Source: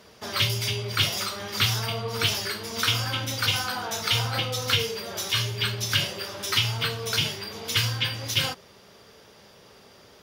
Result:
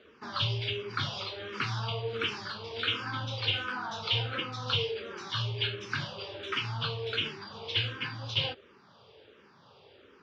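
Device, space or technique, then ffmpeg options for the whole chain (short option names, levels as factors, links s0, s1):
barber-pole phaser into a guitar amplifier: -filter_complex "[0:a]asplit=2[s0][s1];[s1]afreqshift=-1.4[s2];[s0][s2]amix=inputs=2:normalize=1,asoftclip=type=tanh:threshold=0.15,highpass=98,equalizer=f=190:t=q:w=4:g=-7,equalizer=f=670:t=q:w=4:g=-6,equalizer=f=2000:t=q:w=4:g=-7,lowpass=f=3700:w=0.5412,lowpass=f=3700:w=1.3066"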